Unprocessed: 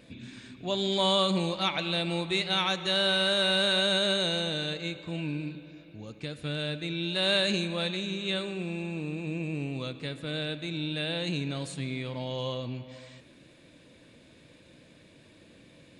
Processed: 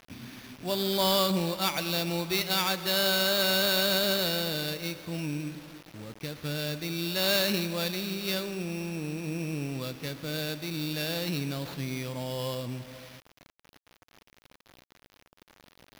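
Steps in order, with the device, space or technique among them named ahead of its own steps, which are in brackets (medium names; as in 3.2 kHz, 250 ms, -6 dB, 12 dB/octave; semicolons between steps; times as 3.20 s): early 8-bit sampler (sample-rate reducer 8.2 kHz, jitter 0%; bit crusher 8-bit)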